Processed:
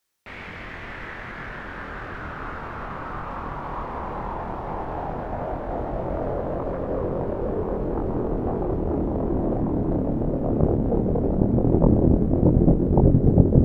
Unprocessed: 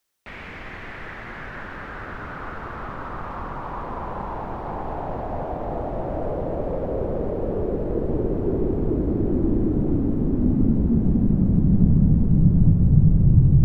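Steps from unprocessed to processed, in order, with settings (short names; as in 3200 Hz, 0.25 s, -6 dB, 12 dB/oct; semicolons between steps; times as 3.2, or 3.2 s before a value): added harmonics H 6 -13 dB, 7 -9 dB, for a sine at -2 dBFS; chorus 0.15 Hz, depth 4.5 ms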